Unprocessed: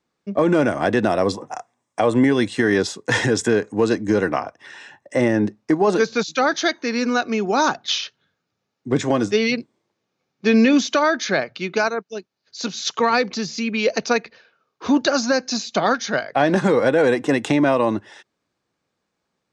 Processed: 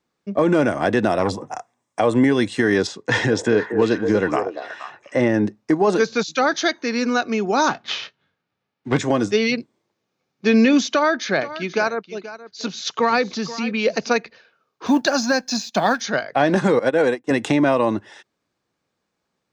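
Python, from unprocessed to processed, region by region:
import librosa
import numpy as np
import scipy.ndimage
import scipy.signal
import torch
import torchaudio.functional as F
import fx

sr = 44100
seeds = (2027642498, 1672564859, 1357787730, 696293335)

y = fx.chain(x, sr, fx.low_shelf(hz=220.0, db=6.5),
    fx.transformer_sat(knee_hz=700.0), at=(1.19, 1.59))
y = fx.chain(y, sr, fx.lowpass(hz=5500.0, slope=12),
    fx.echo_stepped(ms=236, hz=480.0, octaves=1.4, feedback_pct=70, wet_db=-5.0), at=(2.87, 5.34))
y = fx.envelope_flatten(y, sr, power=0.6, at=(7.69, 8.97), fade=0.02)
y = fx.lowpass(y, sr, hz=3100.0, slope=12, at=(7.69, 8.97), fade=0.02)
y = fx.doubler(y, sr, ms=22.0, db=-13.0, at=(7.69, 8.97), fade=0.02)
y = fx.chain(y, sr, fx.air_absorb(metres=59.0),
    fx.echo_single(ms=480, db=-15.0), at=(10.88, 14.11))
y = fx.chain(y, sr, fx.law_mismatch(coded='A'),
    fx.low_shelf_res(hz=140.0, db=-6.0, q=1.5),
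    fx.comb(ms=1.2, depth=0.39), at=(14.86, 16.01))
y = fx.chain(y, sr, fx.highpass(hz=130.0, slope=12),
    fx.upward_expand(threshold_db=-34.0, expansion=2.5), at=(16.79, 17.31))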